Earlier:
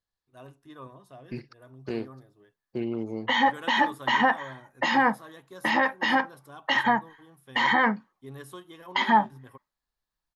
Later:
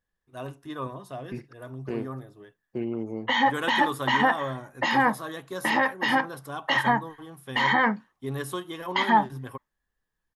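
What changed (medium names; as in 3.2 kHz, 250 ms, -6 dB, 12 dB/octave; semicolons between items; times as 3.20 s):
first voice +10.5 dB; second voice: add peaking EQ 4.2 kHz -13.5 dB 0.71 oct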